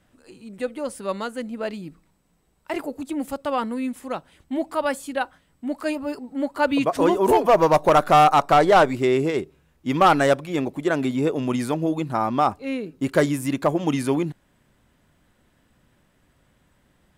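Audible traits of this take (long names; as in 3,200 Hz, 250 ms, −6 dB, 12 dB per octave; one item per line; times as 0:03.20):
background noise floor −64 dBFS
spectral slope −4.5 dB per octave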